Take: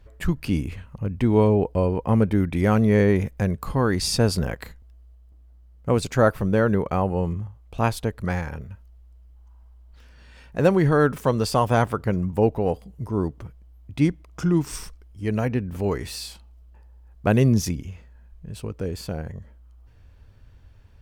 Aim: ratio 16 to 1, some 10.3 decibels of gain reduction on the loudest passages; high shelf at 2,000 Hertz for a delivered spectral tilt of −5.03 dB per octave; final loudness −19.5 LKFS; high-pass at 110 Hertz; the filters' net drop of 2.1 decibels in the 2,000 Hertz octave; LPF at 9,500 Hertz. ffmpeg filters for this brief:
ffmpeg -i in.wav -af "highpass=110,lowpass=9500,highshelf=frequency=2000:gain=8.5,equalizer=frequency=2000:width_type=o:gain=-8,acompressor=threshold=-23dB:ratio=16,volume=10.5dB" out.wav

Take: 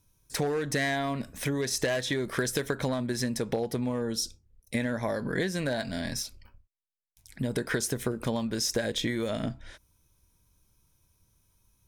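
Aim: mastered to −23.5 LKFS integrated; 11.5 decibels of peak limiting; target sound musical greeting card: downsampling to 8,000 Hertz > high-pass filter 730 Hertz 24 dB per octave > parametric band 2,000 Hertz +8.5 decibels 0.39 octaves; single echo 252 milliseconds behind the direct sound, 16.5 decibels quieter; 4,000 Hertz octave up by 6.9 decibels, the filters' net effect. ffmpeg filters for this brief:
ffmpeg -i in.wav -af "equalizer=frequency=4000:width_type=o:gain=8.5,alimiter=limit=-22.5dB:level=0:latency=1,aecho=1:1:252:0.15,aresample=8000,aresample=44100,highpass=frequency=730:width=0.5412,highpass=frequency=730:width=1.3066,equalizer=frequency=2000:width_type=o:width=0.39:gain=8.5,volume=12dB" out.wav

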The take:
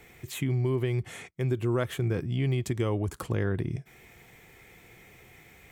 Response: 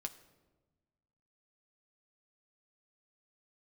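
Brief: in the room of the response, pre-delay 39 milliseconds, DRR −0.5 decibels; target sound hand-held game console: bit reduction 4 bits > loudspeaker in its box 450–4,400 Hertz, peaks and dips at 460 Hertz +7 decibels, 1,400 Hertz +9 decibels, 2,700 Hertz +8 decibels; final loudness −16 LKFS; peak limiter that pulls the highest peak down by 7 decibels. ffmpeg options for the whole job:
-filter_complex "[0:a]alimiter=limit=-23dB:level=0:latency=1,asplit=2[link_01][link_02];[1:a]atrim=start_sample=2205,adelay=39[link_03];[link_02][link_03]afir=irnorm=-1:irlink=0,volume=3dB[link_04];[link_01][link_04]amix=inputs=2:normalize=0,acrusher=bits=3:mix=0:aa=0.000001,highpass=450,equalizer=frequency=460:width_type=q:width=4:gain=7,equalizer=frequency=1400:width_type=q:width=4:gain=9,equalizer=frequency=2700:width_type=q:width=4:gain=8,lowpass=frequency=4400:width=0.5412,lowpass=frequency=4400:width=1.3066,volume=12dB"

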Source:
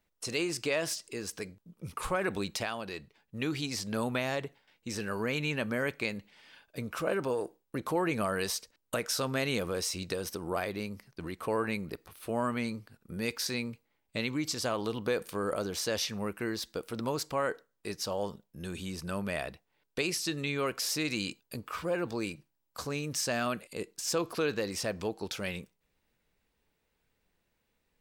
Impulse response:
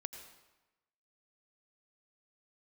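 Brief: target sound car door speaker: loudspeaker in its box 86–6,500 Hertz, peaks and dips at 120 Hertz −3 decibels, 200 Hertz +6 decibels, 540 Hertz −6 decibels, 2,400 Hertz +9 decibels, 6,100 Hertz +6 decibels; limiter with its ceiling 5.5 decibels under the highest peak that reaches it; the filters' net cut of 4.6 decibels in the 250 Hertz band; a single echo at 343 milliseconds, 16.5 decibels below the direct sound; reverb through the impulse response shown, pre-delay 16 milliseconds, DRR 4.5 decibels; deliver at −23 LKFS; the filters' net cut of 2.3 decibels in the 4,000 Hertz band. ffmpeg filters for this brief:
-filter_complex "[0:a]equalizer=frequency=250:width_type=o:gain=-9,equalizer=frequency=4000:width_type=o:gain=-5.5,alimiter=level_in=0.5dB:limit=-24dB:level=0:latency=1,volume=-0.5dB,aecho=1:1:343:0.15,asplit=2[link_01][link_02];[1:a]atrim=start_sample=2205,adelay=16[link_03];[link_02][link_03]afir=irnorm=-1:irlink=0,volume=-2dB[link_04];[link_01][link_04]amix=inputs=2:normalize=0,highpass=86,equalizer=frequency=120:width_type=q:width=4:gain=-3,equalizer=frequency=200:width_type=q:width=4:gain=6,equalizer=frequency=540:width_type=q:width=4:gain=-6,equalizer=frequency=2400:width_type=q:width=4:gain=9,equalizer=frequency=6100:width_type=q:width=4:gain=6,lowpass=frequency=6500:width=0.5412,lowpass=frequency=6500:width=1.3066,volume=11.5dB"

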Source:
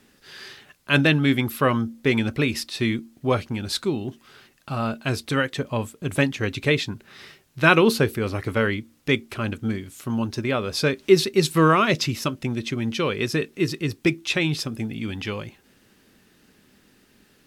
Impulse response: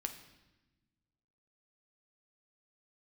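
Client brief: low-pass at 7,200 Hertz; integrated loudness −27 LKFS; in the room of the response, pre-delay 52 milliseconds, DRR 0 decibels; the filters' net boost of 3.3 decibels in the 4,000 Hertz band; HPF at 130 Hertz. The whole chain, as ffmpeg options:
-filter_complex "[0:a]highpass=130,lowpass=7200,equalizer=frequency=4000:width_type=o:gain=4.5,asplit=2[link_01][link_02];[1:a]atrim=start_sample=2205,adelay=52[link_03];[link_02][link_03]afir=irnorm=-1:irlink=0,volume=1dB[link_04];[link_01][link_04]amix=inputs=2:normalize=0,volume=-7dB"

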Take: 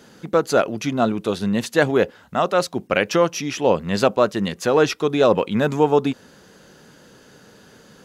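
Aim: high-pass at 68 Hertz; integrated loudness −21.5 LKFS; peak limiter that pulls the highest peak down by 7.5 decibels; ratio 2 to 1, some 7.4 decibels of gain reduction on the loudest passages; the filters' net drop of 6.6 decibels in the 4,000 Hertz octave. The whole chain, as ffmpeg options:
ffmpeg -i in.wav -af "highpass=68,equalizer=frequency=4000:width_type=o:gain=-9,acompressor=threshold=-25dB:ratio=2,volume=7dB,alimiter=limit=-9dB:level=0:latency=1" out.wav

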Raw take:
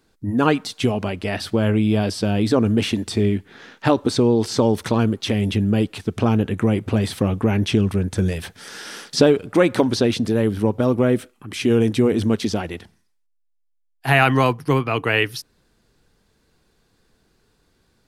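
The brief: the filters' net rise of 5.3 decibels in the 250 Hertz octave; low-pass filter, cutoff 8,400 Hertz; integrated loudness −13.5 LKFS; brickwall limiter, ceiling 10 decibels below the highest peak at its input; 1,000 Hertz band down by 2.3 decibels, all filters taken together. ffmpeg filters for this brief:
ffmpeg -i in.wav -af "lowpass=8400,equalizer=frequency=250:width_type=o:gain=6.5,equalizer=frequency=1000:width_type=o:gain=-3.5,volume=5.5dB,alimiter=limit=-2.5dB:level=0:latency=1" out.wav

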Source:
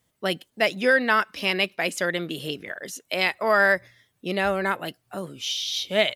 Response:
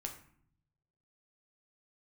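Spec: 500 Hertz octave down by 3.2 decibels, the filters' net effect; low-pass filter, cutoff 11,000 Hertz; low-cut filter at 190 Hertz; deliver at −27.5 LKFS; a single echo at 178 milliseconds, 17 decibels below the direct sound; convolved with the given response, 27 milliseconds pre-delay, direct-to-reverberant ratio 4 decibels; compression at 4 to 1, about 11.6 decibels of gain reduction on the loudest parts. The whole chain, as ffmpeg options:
-filter_complex "[0:a]highpass=190,lowpass=11000,equalizer=frequency=500:width_type=o:gain=-4,acompressor=threshold=-30dB:ratio=4,aecho=1:1:178:0.141,asplit=2[link_01][link_02];[1:a]atrim=start_sample=2205,adelay=27[link_03];[link_02][link_03]afir=irnorm=-1:irlink=0,volume=-2.5dB[link_04];[link_01][link_04]amix=inputs=2:normalize=0,volume=4.5dB"

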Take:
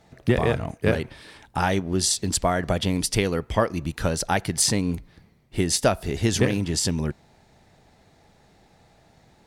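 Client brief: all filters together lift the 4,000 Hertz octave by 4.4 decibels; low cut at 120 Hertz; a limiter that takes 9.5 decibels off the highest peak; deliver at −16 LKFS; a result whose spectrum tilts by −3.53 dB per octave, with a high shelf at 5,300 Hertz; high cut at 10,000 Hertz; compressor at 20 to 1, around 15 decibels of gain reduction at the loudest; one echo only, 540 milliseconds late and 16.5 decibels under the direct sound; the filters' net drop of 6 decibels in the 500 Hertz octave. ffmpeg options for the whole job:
ffmpeg -i in.wav -af "highpass=120,lowpass=10000,equalizer=frequency=500:width_type=o:gain=-8,equalizer=frequency=4000:width_type=o:gain=3.5,highshelf=frequency=5300:gain=4.5,acompressor=threshold=-30dB:ratio=20,alimiter=limit=-24dB:level=0:latency=1,aecho=1:1:540:0.15,volume=21dB" out.wav

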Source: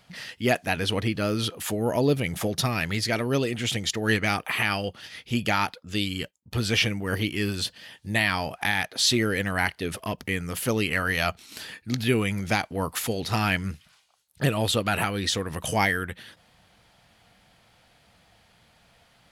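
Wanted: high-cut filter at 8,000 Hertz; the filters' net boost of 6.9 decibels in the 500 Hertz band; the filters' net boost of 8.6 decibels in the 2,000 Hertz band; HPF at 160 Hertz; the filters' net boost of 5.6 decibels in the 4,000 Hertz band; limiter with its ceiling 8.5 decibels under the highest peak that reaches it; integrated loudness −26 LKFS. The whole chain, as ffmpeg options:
ffmpeg -i in.wav -af "highpass=160,lowpass=8000,equalizer=frequency=500:width_type=o:gain=8,equalizer=frequency=2000:width_type=o:gain=9,equalizer=frequency=4000:width_type=o:gain=4,volume=-3dB,alimiter=limit=-12dB:level=0:latency=1" out.wav

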